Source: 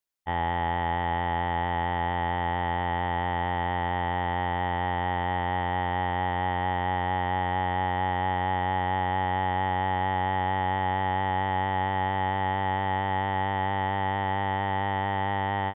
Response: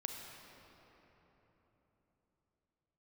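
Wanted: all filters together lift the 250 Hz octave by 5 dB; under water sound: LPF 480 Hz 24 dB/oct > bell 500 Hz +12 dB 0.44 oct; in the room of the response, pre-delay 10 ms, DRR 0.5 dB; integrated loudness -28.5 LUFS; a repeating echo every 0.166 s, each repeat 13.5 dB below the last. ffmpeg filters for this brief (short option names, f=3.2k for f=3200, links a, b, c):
-filter_complex "[0:a]equalizer=f=250:t=o:g=6,aecho=1:1:166|332:0.211|0.0444,asplit=2[a][b];[1:a]atrim=start_sample=2205,adelay=10[c];[b][c]afir=irnorm=-1:irlink=0,volume=0dB[d];[a][d]amix=inputs=2:normalize=0,lowpass=f=480:w=0.5412,lowpass=f=480:w=1.3066,equalizer=f=500:t=o:w=0.44:g=12,volume=-1dB"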